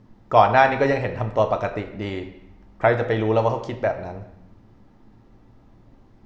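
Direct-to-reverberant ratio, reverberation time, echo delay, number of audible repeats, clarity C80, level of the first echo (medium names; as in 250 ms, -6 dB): 5.0 dB, 0.80 s, no echo, no echo, 12.5 dB, no echo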